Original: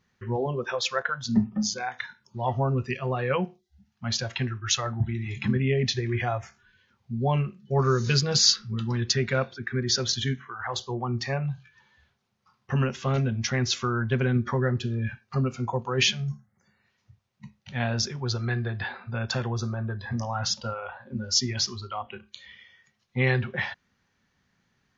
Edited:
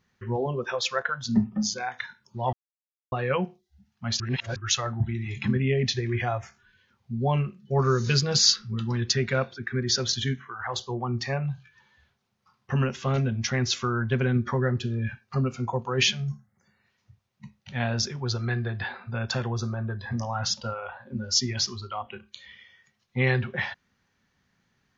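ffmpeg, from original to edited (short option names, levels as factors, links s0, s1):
-filter_complex "[0:a]asplit=5[s0][s1][s2][s3][s4];[s0]atrim=end=2.53,asetpts=PTS-STARTPTS,afade=t=out:st=2.526:d=0.004:c=hsin[s5];[s1]atrim=start=2.53:end=3.12,asetpts=PTS-STARTPTS,volume=0[s6];[s2]atrim=start=3.12:end=4.202,asetpts=PTS-STARTPTS,afade=t=in:d=0.004:c=hsin[s7];[s3]atrim=start=4.198:end=4.562,asetpts=PTS-STARTPTS,areverse[s8];[s4]atrim=start=4.558[s9];[s5][s6][s7]concat=n=3:v=0:a=1[s10];[s10][s8]acrossfade=d=0.004:c1=hsin:c2=hsin[s11];[s11][s9]acrossfade=d=0.004:c1=hsin:c2=hsin"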